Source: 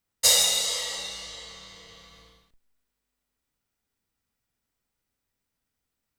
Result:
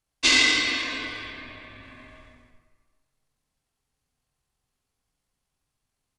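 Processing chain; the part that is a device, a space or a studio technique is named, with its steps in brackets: 1.24–1.84 high shelf 8100 Hz -5.5 dB; monster voice (pitch shift -10.5 st; low shelf 240 Hz +4.5 dB; echo 86 ms -6.5 dB; reverb RT60 1.5 s, pre-delay 42 ms, DRR 6 dB)

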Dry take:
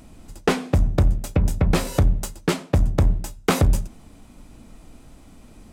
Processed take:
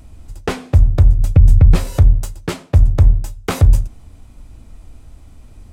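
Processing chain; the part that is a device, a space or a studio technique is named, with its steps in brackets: 1.19–1.76 tone controls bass +10 dB, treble -1 dB; car stereo with a boomy subwoofer (resonant low shelf 130 Hz +9 dB, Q 1.5; limiter 0 dBFS, peak gain reduction 10 dB); gain -1 dB

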